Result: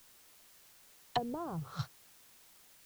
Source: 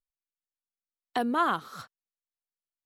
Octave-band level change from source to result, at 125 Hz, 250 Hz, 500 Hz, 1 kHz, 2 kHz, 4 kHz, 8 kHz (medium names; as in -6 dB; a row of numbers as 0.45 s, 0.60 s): +9.0 dB, -9.0 dB, -7.0 dB, -11.0 dB, -15.0 dB, -4.0 dB, -0.5 dB